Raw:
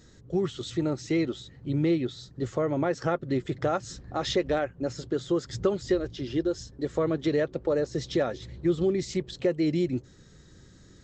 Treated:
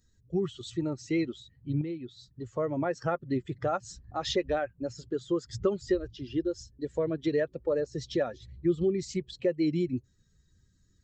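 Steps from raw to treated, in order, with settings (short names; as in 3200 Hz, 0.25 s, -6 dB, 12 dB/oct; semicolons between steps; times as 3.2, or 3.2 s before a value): per-bin expansion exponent 1.5; 1.81–2.56 compressor 2.5:1, threshold -38 dBFS, peak gain reduction 10.5 dB; 6.56–7.12 bell 1200 Hz -15 dB 0.25 oct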